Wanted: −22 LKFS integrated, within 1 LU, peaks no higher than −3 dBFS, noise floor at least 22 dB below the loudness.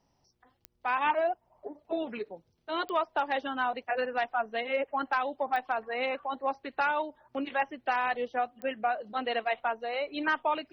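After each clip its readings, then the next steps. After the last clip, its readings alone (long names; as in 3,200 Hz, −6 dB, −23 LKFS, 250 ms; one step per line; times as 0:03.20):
number of clicks 4; integrated loudness −31.5 LKFS; sample peak −17.0 dBFS; target loudness −22.0 LKFS
→ click removal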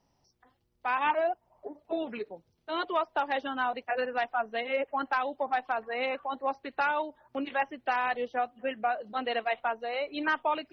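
number of clicks 0; integrated loudness −31.5 LKFS; sample peak −17.0 dBFS; target loudness −22.0 LKFS
→ level +9.5 dB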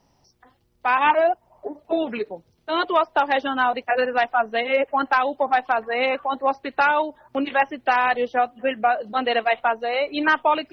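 integrated loudness −22.0 LKFS; sample peak −7.5 dBFS; background noise floor −64 dBFS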